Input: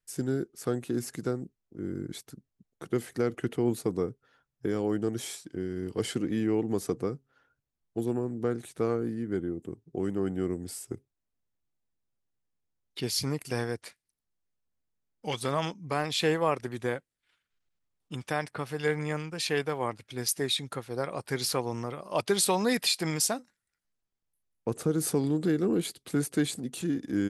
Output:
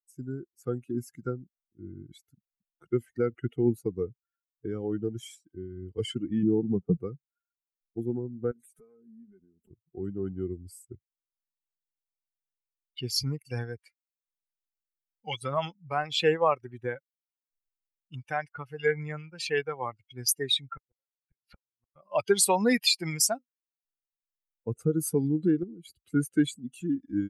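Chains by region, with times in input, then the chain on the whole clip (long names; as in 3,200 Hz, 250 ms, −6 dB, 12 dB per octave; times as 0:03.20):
0:06.43–0:06.97: low-pass filter 1,200 Hz 24 dB per octave + parametric band 170 Hz +13.5 dB 0.36 octaves
0:08.51–0:09.71: parametric band 11,000 Hz +11.5 dB 1.4 octaves + downward compressor 5 to 1, threshold −42 dBFS + comb filter 4.7 ms, depth 60%
0:20.67–0:21.96: high shelf with overshoot 3,800 Hz −13.5 dB, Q 1.5 + gate with flip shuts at −25 dBFS, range −38 dB
0:25.63–0:26.04: low-shelf EQ 300 Hz +9.5 dB + downward compressor 8 to 1, threshold −33 dBFS
whole clip: spectral dynamics exaggerated over time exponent 2; automatic gain control gain up to 7 dB; level −1 dB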